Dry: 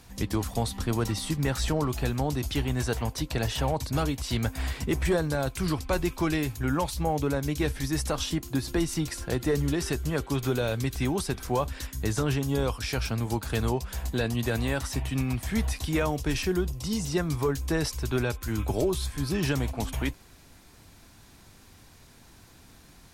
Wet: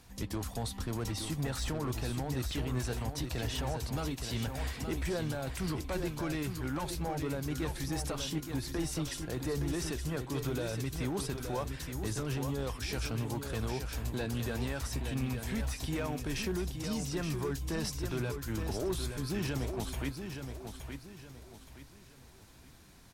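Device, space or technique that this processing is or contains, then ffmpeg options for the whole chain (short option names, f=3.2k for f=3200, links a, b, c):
limiter into clipper: -af "alimiter=limit=-20.5dB:level=0:latency=1:release=21,asoftclip=type=hard:threshold=-23.5dB,aecho=1:1:870|1740|2610|3480:0.447|0.156|0.0547|0.0192,volume=-5.5dB"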